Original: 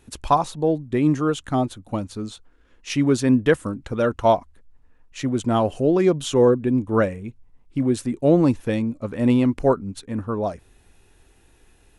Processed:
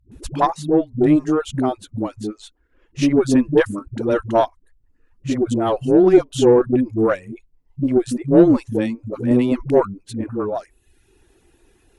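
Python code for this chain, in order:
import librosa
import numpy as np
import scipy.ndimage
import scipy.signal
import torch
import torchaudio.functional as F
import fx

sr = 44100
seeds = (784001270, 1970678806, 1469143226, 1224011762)

y = fx.peak_eq(x, sr, hz=350.0, db=8.5, octaves=0.61)
y = fx.dispersion(y, sr, late='highs', ms=117.0, hz=300.0)
y = fx.dereverb_blind(y, sr, rt60_s=0.69)
y = fx.cheby_harmonics(y, sr, harmonics=(4, 8), levels_db=(-24, -45), full_scale_db=-1.5)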